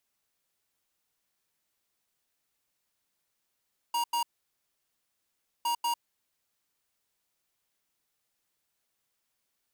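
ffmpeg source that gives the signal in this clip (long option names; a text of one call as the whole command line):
ffmpeg -f lavfi -i "aevalsrc='0.0376*(2*lt(mod(945*t,1),0.5)-1)*clip(min(mod(mod(t,1.71),0.19),0.1-mod(mod(t,1.71),0.19))/0.005,0,1)*lt(mod(t,1.71),0.38)':duration=3.42:sample_rate=44100" out.wav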